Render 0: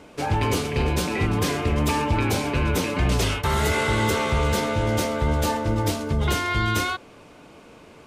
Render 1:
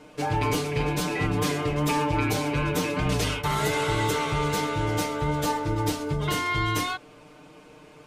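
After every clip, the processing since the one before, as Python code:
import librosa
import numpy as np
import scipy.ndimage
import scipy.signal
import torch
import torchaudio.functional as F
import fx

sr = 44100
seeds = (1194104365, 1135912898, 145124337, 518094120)

y = x + 0.89 * np.pad(x, (int(6.6 * sr / 1000.0), 0))[:len(x)]
y = y * librosa.db_to_amplitude(-5.0)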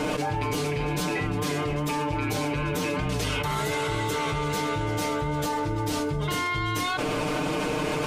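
y = fx.env_flatten(x, sr, amount_pct=100)
y = y * librosa.db_to_amplitude(-4.5)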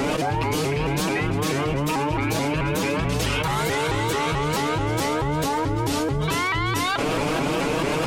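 y = fx.vibrato_shape(x, sr, shape='saw_up', rate_hz=4.6, depth_cents=160.0)
y = y * librosa.db_to_amplitude(4.0)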